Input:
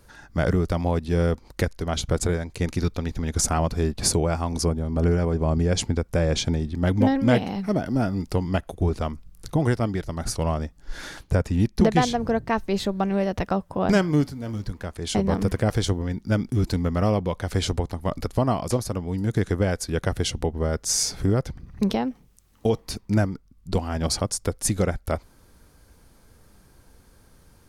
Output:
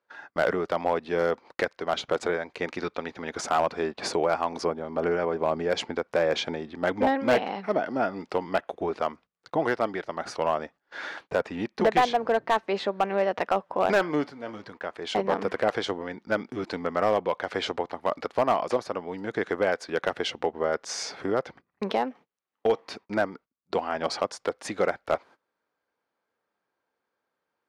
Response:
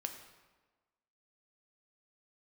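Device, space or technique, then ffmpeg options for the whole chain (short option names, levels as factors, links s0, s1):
walkie-talkie: -af "highpass=510,lowpass=2600,asoftclip=type=hard:threshold=0.112,agate=range=0.0794:threshold=0.00282:ratio=16:detection=peak,volume=1.68"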